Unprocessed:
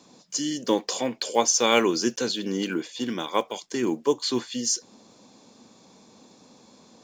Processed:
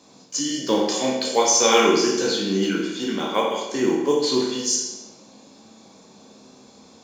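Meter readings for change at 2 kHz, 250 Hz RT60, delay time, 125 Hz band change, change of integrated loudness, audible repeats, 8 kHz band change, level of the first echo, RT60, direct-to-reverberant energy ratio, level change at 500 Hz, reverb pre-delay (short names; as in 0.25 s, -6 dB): +4.0 dB, 1.0 s, none, +4.5 dB, +4.5 dB, none, +4.5 dB, none, 1.0 s, -3.0 dB, +5.5 dB, 11 ms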